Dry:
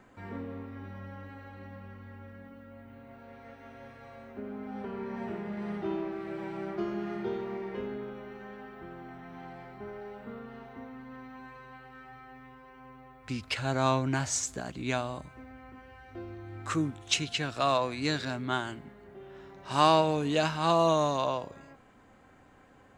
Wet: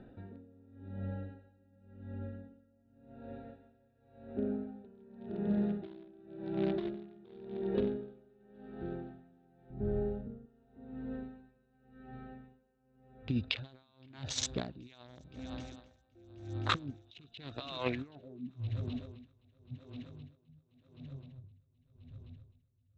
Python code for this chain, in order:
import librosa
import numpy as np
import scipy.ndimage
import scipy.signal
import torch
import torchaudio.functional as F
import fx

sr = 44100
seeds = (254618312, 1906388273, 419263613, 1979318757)

y = fx.wiener(x, sr, points=41)
y = fx.riaa(y, sr, side='playback', at=(9.7, 10.46))
y = fx.over_compress(y, sr, threshold_db=-35.0, ratio=-0.5)
y = fx.filter_sweep_lowpass(y, sr, from_hz=3700.0, to_hz=100.0, start_s=17.79, end_s=18.66, q=6.5)
y = fx.echo_heads(y, sr, ms=259, heads='second and third', feedback_pct=66, wet_db=-20.5)
y = y * 10.0 ** (-26 * (0.5 - 0.5 * np.cos(2.0 * np.pi * 0.9 * np.arange(len(y)) / sr)) / 20.0)
y = F.gain(torch.from_numpy(y), 3.5).numpy()